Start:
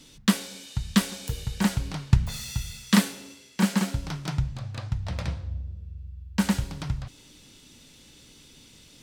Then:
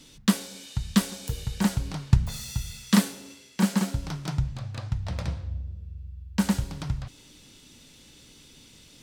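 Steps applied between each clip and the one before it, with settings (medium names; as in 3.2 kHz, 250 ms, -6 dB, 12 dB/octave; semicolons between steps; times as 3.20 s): dynamic bell 2.3 kHz, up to -4 dB, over -44 dBFS, Q 0.82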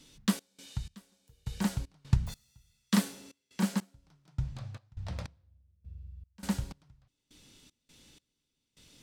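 trance gate "xxxx..xxx......" 154 bpm -24 dB; trim -6.5 dB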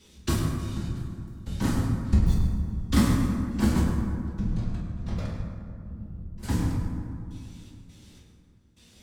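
octave divider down 2 oct, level -1 dB; whisper effect; reverberation RT60 2.4 s, pre-delay 7 ms, DRR -5.5 dB; trim -1.5 dB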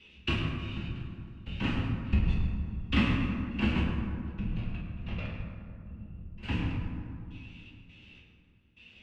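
resonant low-pass 2.7 kHz, resonance Q 11; trim -5.5 dB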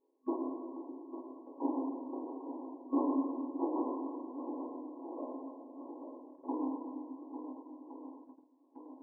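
shuffle delay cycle 1415 ms, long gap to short 1.5:1, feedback 49%, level -10 dB; FFT band-pass 250–1100 Hz; gate -56 dBFS, range -11 dB; trim +3.5 dB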